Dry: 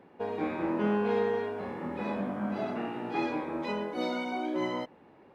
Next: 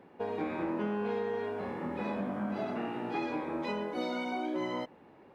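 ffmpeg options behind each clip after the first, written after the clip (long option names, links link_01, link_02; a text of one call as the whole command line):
ffmpeg -i in.wav -af "acompressor=threshold=-30dB:ratio=6" out.wav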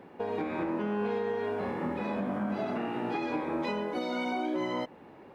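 ffmpeg -i in.wav -af "alimiter=level_in=4.5dB:limit=-24dB:level=0:latency=1:release=285,volume=-4.5dB,volume=5.5dB" out.wav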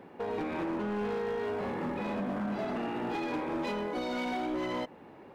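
ffmpeg -i in.wav -af "asoftclip=type=hard:threshold=-29.5dB" out.wav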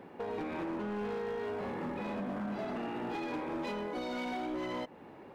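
ffmpeg -i in.wav -af "acompressor=threshold=-41dB:ratio=1.5" out.wav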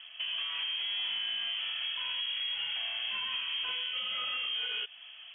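ffmpeg -i in.wav -af "lowpass=frequency=3000:width_type=q:width=0.5098,lowpass=frequency=3000:width_type=q:width=0.6013,lowpass=frequency=3000:width_type=q:width=0.9,lowpass=frequency=3000:width_type=q:width=2.563,afreqshift=-3500,volume=2dB" out.wav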